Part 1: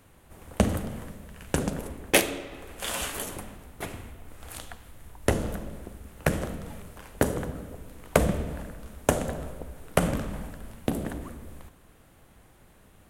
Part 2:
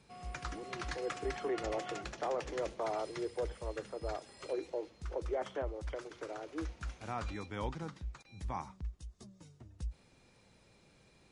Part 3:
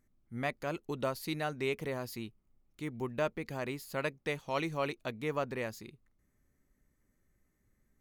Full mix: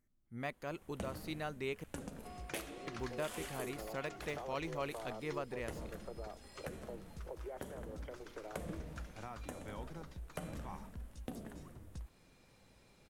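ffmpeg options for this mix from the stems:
-filter_complex "[0:a]flanger=delay=3.4:depth=3.2:regen=68:speed=0.65:shape=triangular,adelay=400,volume=-11dB[a];[1:a]acompressor=threshold=-42dB:ratio=6,adelay=2150,volume=-1.5dB[b];[2:a]deesser=0.95,volume=-6dB,asplit=3[c][d][e];[c]atrim=end=1.84,asetpts=PTS-STARTPTS,afade=t=out:st=1.836:d=0.004:c=hsin[f];[d]atrim=start=1.84:end=2.87,asetpts=PTS-STARTPTS,volume=0[g];[e]atrim=start=2.87,asetpts=PTS-STARTPTS,afade=t=in:d=0.004:c=hsin[h];[f][g][h]concat=n=3:v=0:a=1[i];[a][b][i]amix=inputs=3:normalize=0,alimiter=level_in=3.5dB:limit=-24dB:level=0:latency=1:release=308,volume=-3.5dB"

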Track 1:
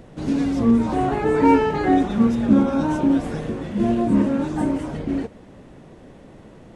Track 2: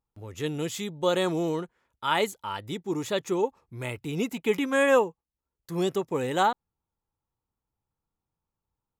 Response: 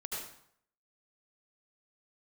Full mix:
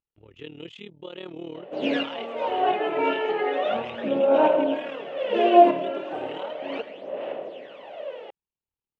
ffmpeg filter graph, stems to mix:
-filter_complex "[0:a]aphaser=in_gain=1:out_gain=1:delay=3:decay=0.69:speed=0.35:type=sinusoidal,highpass=f=580:t=q:w=4.9,adelay=1550,volume=-2.5dB,asplit=2[a][b];[b]volume=-14.5dB[c];[1:a]equalizer=f=380:w=2:g=4.5,alimiter=limit=-19dB:level=0:latency=1:release=320,tremolo=f=38:d=0.857,volume=-10.5dB,asplit=2[d][e];[e]apad=whole_len=366174[f];[a][f]sidechaincompress=threshold=-57dB:ratio=8:attack=29:release=239[g];[2:a]atrim=start_sample=2205[h];[c][h]afir=irnorm=-1:irlink=0[i];[g][d][i]amix=inputs=3:normalize=0,lowpass=f=2.9k:t=q:w=5.4,equalizer=f=320:t=o:w=1.8:g=3.5"

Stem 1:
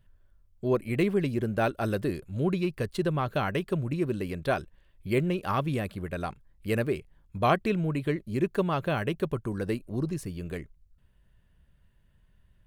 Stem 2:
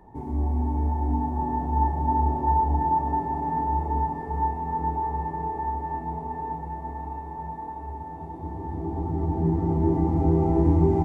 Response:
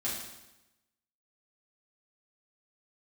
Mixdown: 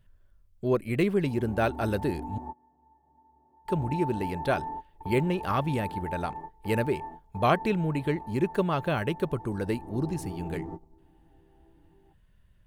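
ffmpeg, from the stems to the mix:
-filter_complex "[0:a]volume=0.5dB,asplit=3[a][b][c];[a]atrim=end=2.38,asetpts=PTS-STARTPTS,afade=t=out:st=2.376:d=0.004:c=hsin[d];[b]atrim=start=2.38:end=3.65,asetpts=PTS-STARTPTS,volume=0[e];[c]atrim=start=3.65,asetpts=PTS-STARTPTS,afade=t=in:d=0.004:c=hsin[f];[d][e][f]concat=n=3:v=0:a=1,asplit=2[g][h];[1:a]lowpass=f=1.7k:p=1,aemphasis=mode=production:type=bsi,acompressor=threshold=-25dB:ratio=6,adelay=1100,volume=-6.5dB[i];[h]apad=whole_len=535501[j];[i][j]sidechaingate=range=-27dB:threshold=-50dB:ratio=16:detection=peak[k];[g][k]amix=inputs=2:normalize=0"

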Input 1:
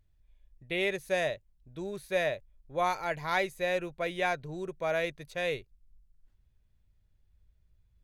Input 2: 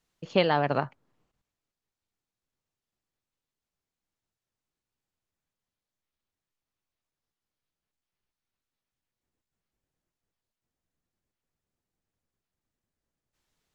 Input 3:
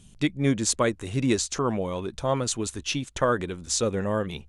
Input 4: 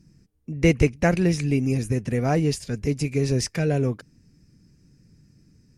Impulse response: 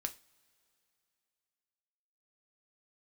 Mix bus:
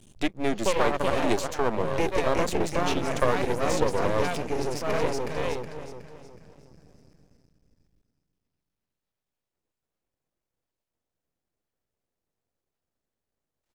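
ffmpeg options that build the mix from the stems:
-filter_complex "[0:a]volume=-1.5dB,asplit=2[a][b];[b]volume=-17.5dB[c];[1:a]adelay=300,volume=-1.5dB,asplit=2[d][e];[e]volume=-6.5dB[f];[2:a]volume=1dB[g];[3:a]acompressor=threshold=-31dB:ratio=1.5,adelay=1350,volume=0.5dB,asplit=2[h][i];[i]volume=-4dB[j];[c][f][j]amix=inputs=3:normalize=0,aecho=0:1:368|736|1104|1472|1840|2208:1|0.4|0.16|0.064|0.0256|0.0102[k];[a][d][g][h][k]amix=inputs=5:normalize=0,equalizer=f=530:w=0.89:g=7,acrossover=split=210|3600[l][m][n];[l]acompressor=threshold=-31dB:ratio=4[o];[m]acompressor=threshold=-15dB:ratio=4[p];[n]acompressor=threshold=-35dB:ratio=4[q];[o][p][q]amix=inputs=3:normalize=0,aeval=exprs='max(val(0),0)':c=same"

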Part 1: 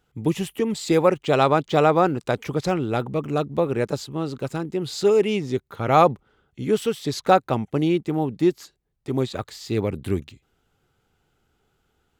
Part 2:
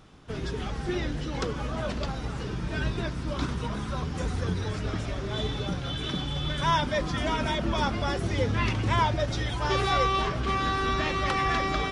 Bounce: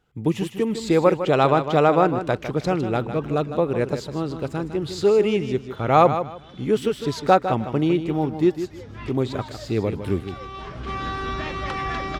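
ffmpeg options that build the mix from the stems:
-filter_complex "[0:a]volume=0.5dB,asplit=3[a][b][c];[b]volume=-10dB[d];[1:a]adelay=400,volume=-1dB[e];[c]apad=whole_len=543132[f];[e][f]sidechaincompress=threshold=-38dB:ratio=5:attack=24:release=596[g];[d]aecho=0:1:155|310|465|620:1|0.22|0.0484|0.0106[h];[a][g][h]amix=inputs=3:normalize=0,highshelf=f=5.4k:g=-7.5"

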